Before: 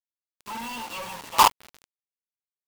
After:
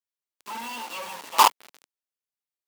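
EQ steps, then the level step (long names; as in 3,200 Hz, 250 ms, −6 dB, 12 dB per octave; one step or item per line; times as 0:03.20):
high-pass filter 270 Hz 12 dB per octave
0.0 dB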